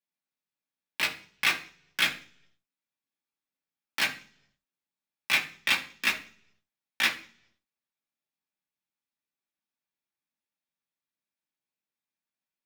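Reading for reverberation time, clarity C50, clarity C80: 0.55 s, 11.5 dB, 16.0 dB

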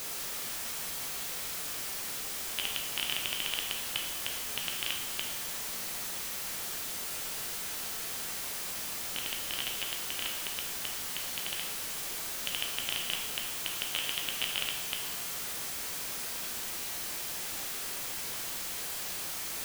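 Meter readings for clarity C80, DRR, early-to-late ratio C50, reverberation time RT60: 7.5 dB, 1.5 dB, 5.0 dB, 1.0 s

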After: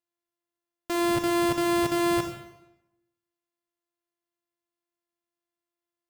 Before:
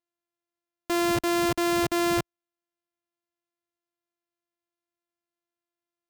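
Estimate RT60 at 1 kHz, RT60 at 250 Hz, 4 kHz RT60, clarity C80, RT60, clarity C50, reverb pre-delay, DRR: 0.90 s, 0.95 s, 0.75 s, 9.5 dB, 0.95 s, 7.0 dB, 29 ms, 5.0 dB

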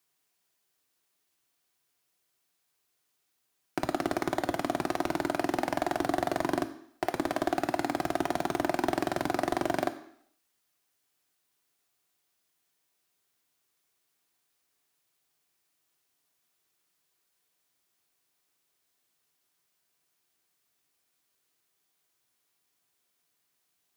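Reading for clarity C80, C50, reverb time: 16.0 dB, 14.0 dB, 0.65 s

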